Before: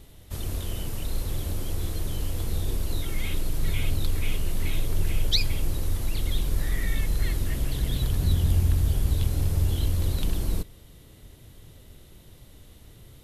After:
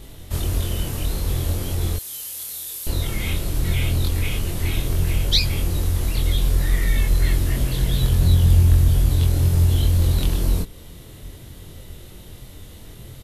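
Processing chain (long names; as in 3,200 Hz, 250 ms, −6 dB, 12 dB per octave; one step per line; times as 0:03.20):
0:01.96–0:02.87: first difference
in parallel at −2 dB: downward compressor, threshold −32 dBFS, peak gain reduction 15 dB
on the sum: double-tracking delay 23 ms −2 dB
level +2.5 dB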